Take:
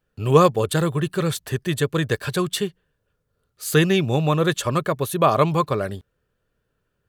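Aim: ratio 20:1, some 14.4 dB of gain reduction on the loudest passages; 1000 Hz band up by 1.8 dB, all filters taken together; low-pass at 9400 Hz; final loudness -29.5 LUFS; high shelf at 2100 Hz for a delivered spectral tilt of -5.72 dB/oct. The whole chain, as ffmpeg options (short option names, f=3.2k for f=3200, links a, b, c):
-af "lowpass=9.4k,equalizer=f=1k:t=o:g=3.5,highshelf=f=2.1k:g=-5.5,acompressor=threshold=-22dB:ratio=20,volume=-1dB"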